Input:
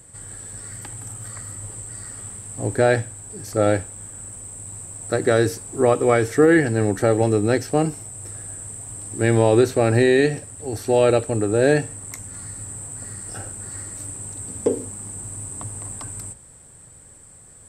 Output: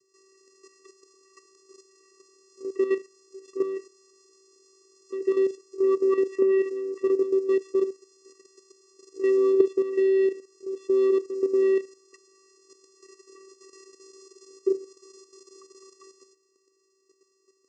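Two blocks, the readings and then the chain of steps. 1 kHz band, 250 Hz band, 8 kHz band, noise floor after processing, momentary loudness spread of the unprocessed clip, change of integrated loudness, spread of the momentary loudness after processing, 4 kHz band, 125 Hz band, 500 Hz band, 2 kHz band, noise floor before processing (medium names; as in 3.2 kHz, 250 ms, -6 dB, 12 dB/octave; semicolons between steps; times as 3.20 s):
-17.0 dB, -7.0 dB, under -20 dB, -70 dBFS, 17 LU, -3.5 dB, 11 LU, under -15 dB, under -40 dB, -3.5 dB, -17.0 dB, -47 dBFS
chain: vocoder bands 8, square 385 Hz; level held to a coarse grid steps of 10 dB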